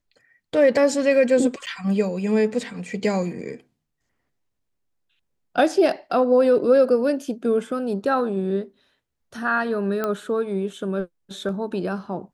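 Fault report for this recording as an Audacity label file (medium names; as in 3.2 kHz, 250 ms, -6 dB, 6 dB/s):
1.660000	1.670000	dropout 8.6 ms
10.040000	10.040000	pop -12 dBFS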